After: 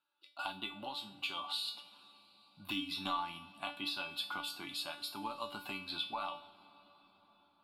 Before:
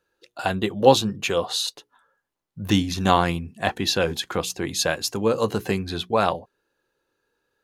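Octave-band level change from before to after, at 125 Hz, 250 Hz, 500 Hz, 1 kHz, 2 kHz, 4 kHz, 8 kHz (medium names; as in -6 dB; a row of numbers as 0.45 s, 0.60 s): -30.0 dB, -21.5 dB, -28.5 dB, -16.5 dB, -13.5 dB, -11.5 dB, -23.5 dB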